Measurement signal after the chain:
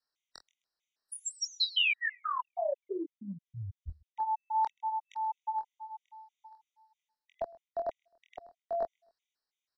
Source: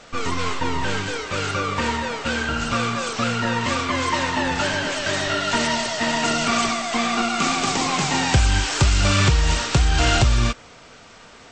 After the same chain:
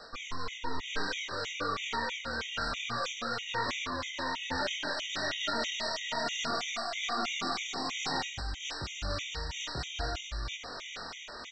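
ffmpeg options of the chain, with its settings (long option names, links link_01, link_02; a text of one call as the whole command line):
ffmpeg -i in.wav -filter_complex "[0:a]bandreject=frequency=2700:width=20,flanger=delay=19.5:depth=7.7:speed=0.57,acrossover=split=420|660[link_01][link_02][link_03];[link_03]alimiter=limit=-22dB:level=0:latency=1:release=12[link_04];[link_01][link_02][link_04]amix=inputs=3:normalize=0,lowpass=frequency=5600:width=0.5412,lowpass=frequency=5600:width=1.3066,asplit=2[link_05][link_06];[link_06]adelay=24,volume=-9dB[link_07];[link_05][link_07]amix=inputs=2:normalize=0,areverse,acompressor=threshold=-37dB:ratio=5,areverse,highshelf=frequency=2800:gain=8,aecho=1:1:130|260:0.0708|0.0127,tremolo=f=1.1:d=0.31,equalizer=frequency=120:width_type=o:width=2.5:gain=-9,afftfilt=real='re*gt(sin(2*PI*3.1*pts/sr)*(1-2*mod(floor(b*sr/1024/1900),2)),0)':imag='im*gt(sin(2*PI*3.1*pts/sr)*(1-2*mod(floor(b*sr/1024/1900),2)),0)':win_size=1024:overlap=0.75,volume=8dB" out.wav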